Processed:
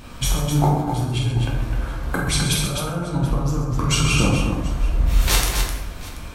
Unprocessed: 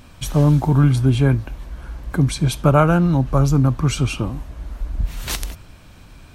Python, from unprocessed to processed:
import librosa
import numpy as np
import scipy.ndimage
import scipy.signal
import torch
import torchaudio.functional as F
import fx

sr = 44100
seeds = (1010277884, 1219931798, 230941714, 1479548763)

p1 = fx.hum_notches(x, sr, base_hz=50, count=3)
p2 = fx.over_compress(p1, sr, threshold_db=-21.0, ratio=-0.5)
p3 = p2 + fx.echo_multitap(p2, sr, ms=(47, 130, 257, 732), db=(-7.5, -10.0, -6.0, -19.5), dry=0)
p4 = fx.rev_plate(p3, sr, seeds[0], rt60_s=0.91, hf_ratio=0.6, predelay_ms=0, drr_db=-1.5)
y = p4 * 10.0 ** (-1.5 / 20.0)